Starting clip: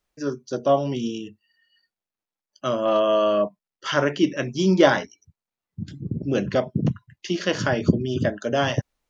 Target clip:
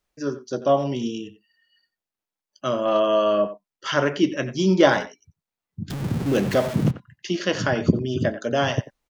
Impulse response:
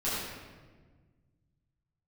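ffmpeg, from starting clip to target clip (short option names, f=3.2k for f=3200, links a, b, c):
-filter_complex "[0:a]asettb=1/sr,asplit=3[a][b][c];[a]atrim=end=5.904[d];[b]atrim=start=5.9:end=6.91,asetpts=PTS-STARTPTS,afade=t=in:d=0.004:c=qsin,afade=t=out:st=1.006:d=0.004:c=qsin,aeval=exprs='val(0)+0.5*0.0501*sgn(val(0))':c=same[e];[c]atrim=start=6.906[f];[d][e]acrossfade=d=0.004:c1=hsin:c2=qsin[g];[g][f]acrossfade=d=0.004:c1=qsin:c2=hsin,asplit=2[h][i];[i]adelay=90,highpass=300,lowpass=3.4k,asoftclip=type=hard:threshold=-11dB,volume=-13dB[j];[h][j]amix=inputs=2:normalize=0"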